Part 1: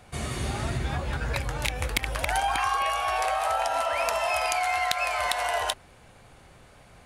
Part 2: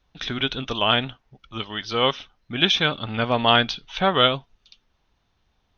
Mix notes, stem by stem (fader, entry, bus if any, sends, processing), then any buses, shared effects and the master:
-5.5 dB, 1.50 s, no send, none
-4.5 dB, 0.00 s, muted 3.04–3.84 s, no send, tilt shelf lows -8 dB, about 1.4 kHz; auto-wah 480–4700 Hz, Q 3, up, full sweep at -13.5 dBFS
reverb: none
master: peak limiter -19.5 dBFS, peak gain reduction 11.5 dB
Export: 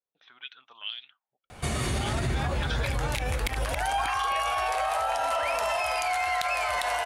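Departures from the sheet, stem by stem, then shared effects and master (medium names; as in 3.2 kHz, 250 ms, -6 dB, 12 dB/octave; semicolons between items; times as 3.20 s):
stem 1 -5.5 dB -> +6.0 dB; stem 2 -4.5 dB -> -13.0 dB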